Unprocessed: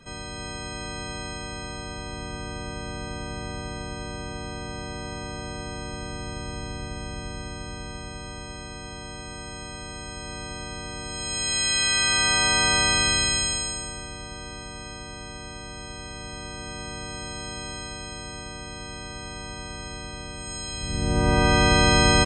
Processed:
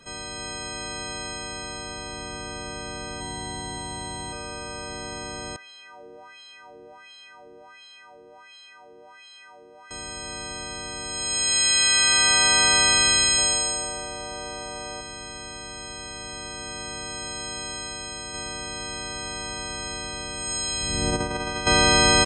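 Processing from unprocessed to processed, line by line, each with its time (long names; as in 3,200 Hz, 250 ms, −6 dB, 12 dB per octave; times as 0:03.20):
0:02.63–0:03.75: delay throw 570 ms, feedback 30%, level −3 dB
0:05.56–0:09.91: LFO wah 1.4 Hz 420–3,600 Hz, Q 3.8
0:13.38–0:15.01: parametric band 640 Hz +8.5 dB 1.3 octaves
0:18.34–0:21.67: compressor whose output falls as the input rises −23 dBFS, ratio −0.5
whole clip: bass and treble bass −7 dB, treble +4 dB; level +1 dB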